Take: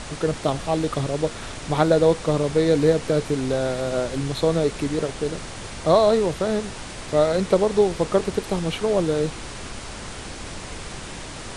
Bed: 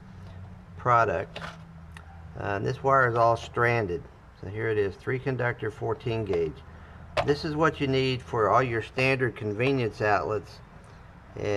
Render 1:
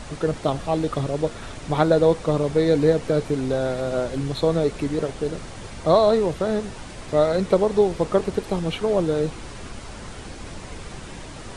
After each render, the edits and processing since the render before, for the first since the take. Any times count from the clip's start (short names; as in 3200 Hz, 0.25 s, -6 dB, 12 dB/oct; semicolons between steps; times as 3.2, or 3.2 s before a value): denoiser 6 dB, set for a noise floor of -36 dBFS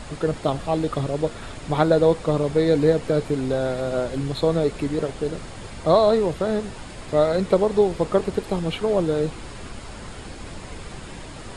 notch 5900 Hz, Q 9.9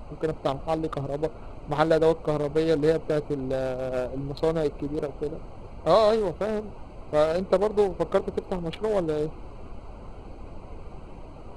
Wiener smoothing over 25 samples; bell 170 Hz -7 dB 2.8 oct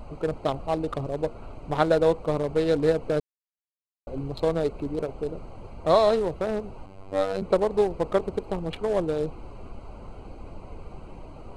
3.2–4.07 mute; 6.86–7.42 robotiser 96.4 Hz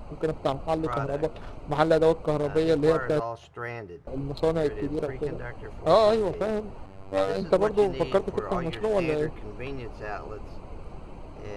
add bed -11.5 dB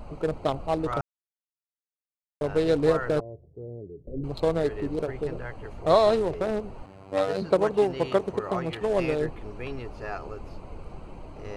1.01–2.41 mute; 3.2–4.24 steep low-pass 510 Hz; 6.82–8.82 HPF 88 Hz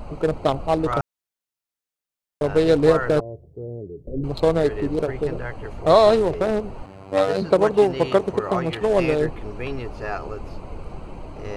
gain +6 dB; limiter -3 dBFS, peak gain reduction 2 dB